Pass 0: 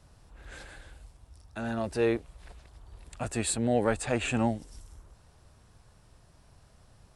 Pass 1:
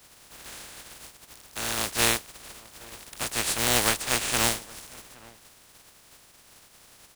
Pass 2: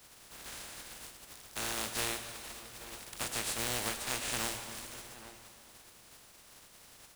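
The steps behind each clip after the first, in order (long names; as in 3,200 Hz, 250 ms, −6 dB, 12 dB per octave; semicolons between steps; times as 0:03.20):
compressing power law on the bin magnitudes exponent 0.19; slap from a distant wall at 140 metres, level −22 dB; level +3 dB
downward compressor 4 to 1, threshold −30 dBFS, peak gain reduction 10.5 dB; convolution reverb RT60 2.8 s, pre-delay 5 ms, DRR 6.5 dB; level −3.5 dB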